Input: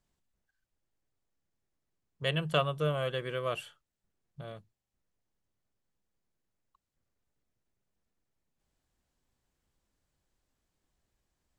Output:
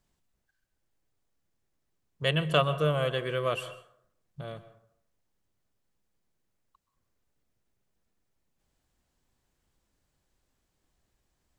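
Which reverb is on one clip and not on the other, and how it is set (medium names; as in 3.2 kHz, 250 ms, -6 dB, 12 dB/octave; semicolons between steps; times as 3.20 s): plate-style reverb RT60 0.68 s, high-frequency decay 0.5×, pre-delay 115 ms, DRR 14 dB; trim +4 dB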